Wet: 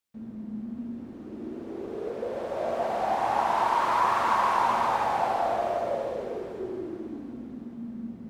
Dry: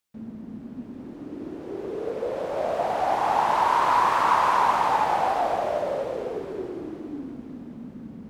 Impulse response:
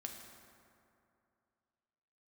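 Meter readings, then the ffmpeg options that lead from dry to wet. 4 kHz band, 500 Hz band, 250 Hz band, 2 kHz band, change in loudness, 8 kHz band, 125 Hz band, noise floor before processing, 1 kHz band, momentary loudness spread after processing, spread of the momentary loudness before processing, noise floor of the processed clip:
-3.5 dB, -2.5 dB, -0.5 dB, -3.5 dB, -4.0 dB, -3.5 dB, -2.5 dB, -42 dBFS, -3.5 dB, 16 LU, 19 LU, -42 dBFS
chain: -filter_complex "[1:a]atrim=start_sample=2205,afade=t=out:st=0.32:d=0.01,atrim=end_sample=14553[s0];[0:a][s0]afir=irnorm=-1:irlink=0"

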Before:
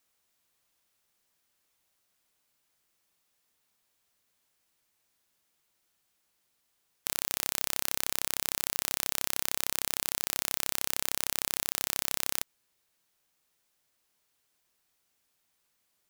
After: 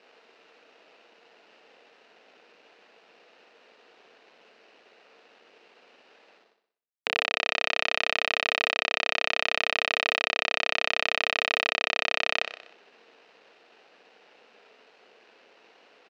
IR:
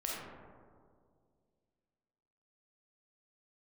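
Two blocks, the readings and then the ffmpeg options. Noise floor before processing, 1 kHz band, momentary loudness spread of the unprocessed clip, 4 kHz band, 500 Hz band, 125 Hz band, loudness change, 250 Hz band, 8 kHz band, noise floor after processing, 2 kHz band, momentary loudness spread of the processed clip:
-76 dBFS, +10.0 dB, 1 LU, +7.5 dB, +13.0 dB, no reading, +4.0 dB, +2.0 dB, -14.5 dB, -62 dBFS, +14.0 dB, 2 LU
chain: -af "equalizer=f=2800:t=o:w=1:g=13.5,areverse,acompressor=mode=upward:threshold=0.00794:ratio=2.5,areverse,acrusher=bits=6:dc=4:mix=0:aa=0.000001,highpass=f=240:w=0.5412,highpass=f=240:w=1.3066,equalizer=f=290:t=q:w=4:g=-3,equalizer=f=460:t=q:w=4:g=9,equalizer=f=700:t=q:w=4:g=4,equalizer=f=1100:t=q:w=4:g=-3,equalizer=f=2200:t=q:w=4:g=-4,equalizer=f=3300:t=q:w=4:g=-10,lowpass=f=3600:w=0.5412,lowpass=f=3600:w=1.3066,aecho=1:1:62|124|186|248|310|372:0.398|0.203|0.104|0.0528|0.0269|0.0137,volume=2.37"

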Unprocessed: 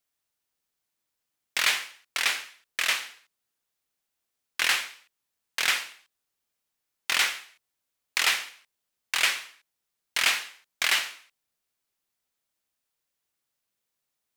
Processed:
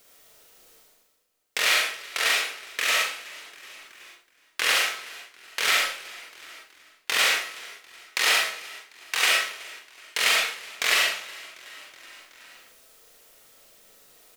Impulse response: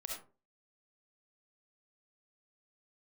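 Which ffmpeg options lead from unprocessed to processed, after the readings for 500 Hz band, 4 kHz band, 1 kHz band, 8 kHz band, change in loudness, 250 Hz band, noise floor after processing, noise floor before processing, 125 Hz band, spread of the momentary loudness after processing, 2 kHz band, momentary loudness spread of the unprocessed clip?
+10.0 dB, +3.5 dB, +5.0 dB, +3.0 dB, +3.0 dB, +4.5 dB, -65 dBFS, -83 dBFS, no reading, 21 LU, +3.5 dB, 14 LU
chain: -filter_complex "[0:a]asplit=2[s0][s1];[s1]acompressor=threshold=0.0224:ratio=6,volume=1[s2];[s0][s2]amix=inputs=2:normalize=0,equalizer=f=460:t=o:w=0.47:g=10.5,bandreject=f=50:t=h:w=6,bandreject=f=100:t=h:w=6,bandreject=f=150:t=h:w=6,asplit=2[s3][s4];[s4]adelay=40,volume=0.668[s5];[s3][s5]amix=inputs=2:normalize=0,asplit=5[s6][s7][s8][s9][s10];[s7]adelay=373,afreqshift=-40,volume=0.0891[s11];[s8]adelay=746,afreqshift=-80,volume=0.0437[s12];[s9]adelay=1119,afreqshift=-120,volume=0.0214[s13];[s10]adelay=1492,afreqshift=-160,volume=0.0105[s14];[s6][s11][s12][s13][s14]amix=inputs=5:normalize=0[s15];[1:a]atrim=start_sample=2205[s16];[s15][s16]afir=irnorm=-1:irlink=0,areverse,acompressor=mode=upward:threshold=0.0126:ratio=2.5,areverse,volume=1.12"

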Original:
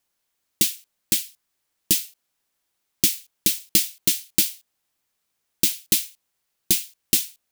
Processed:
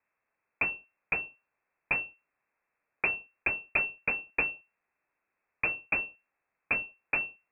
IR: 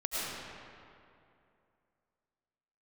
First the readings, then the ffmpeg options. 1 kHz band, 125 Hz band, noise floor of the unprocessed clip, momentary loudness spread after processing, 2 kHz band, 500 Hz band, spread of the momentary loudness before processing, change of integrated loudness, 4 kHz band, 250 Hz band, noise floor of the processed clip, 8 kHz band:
no reading, -11.0 dB, -77 dBFS, 5 LU, +9.0 dB, -1.0 dB, 4 LU, -9.5 dB, under -40 dB, -14.0 dB, -85 dBFS, under -40 dB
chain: -af "aeval=exprs='(tanh(3.55*val(0)+0.6)-tanh(0.6))/3.55':c=same,lowpass=f=2300:t=q:w=0.5098,lowpass=f=2300:t=q:w=0.6013,lowpass=f=2300:t=q:w=0.9,lowpass=f=2300:t=q:w=2.563,afreqshift=-2700,volume=1.78"

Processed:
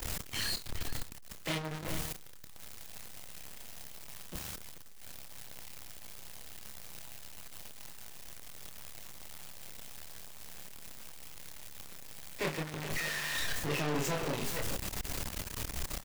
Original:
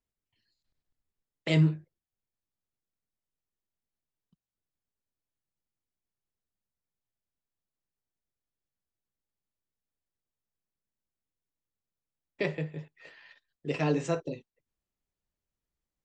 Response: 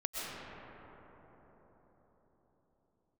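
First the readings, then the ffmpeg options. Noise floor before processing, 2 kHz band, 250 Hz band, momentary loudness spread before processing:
under -85 dBFS, +4.0 dB, -7.0 dB, 17 LU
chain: -filter_complex "[0:a]aeval=exprs='val(0)+0.5*0.0335*sgn(val(0))':c=same,acrossover=split=180|970|1300[s0][s1][s2][s3];[s0]acontrast=69[s4];[s4][s1][s2][s3]amix=inputs=4:normalize=0,asoftclip=type=hard:threshold=0.0531,asplit=2[s5][s6];[s6]adelay=29,volume=0.422[s7];[s5][s7]amix=inputs=2:normalize=0,asplit=2[s8][s9];[s9]adelay=431.5,volume=0.251,highshelf=f=4000:g=-9.71[s10];[s8][s10]amix=inputs=2:normalize=0,aeval=exprs='0.1*(cos(1*acos(clip(val(0)/0.1,-1,1)))-cos(1*PI/2))+0.0282*(cos(2*acos(clip(val(0)/0.1,-1,1)))-cos(2*PI/2))+0.00501*(cos(3*acos(clip(val(0)/0.1,-1,1)))-cos(3*PI/2))+0.0316*(cos(4*acos(clip(val(0)/0.1,-1,1)))-cos(4*PI/2))':c=same,lowshelf=f=340:g=-6,volume=0.794"

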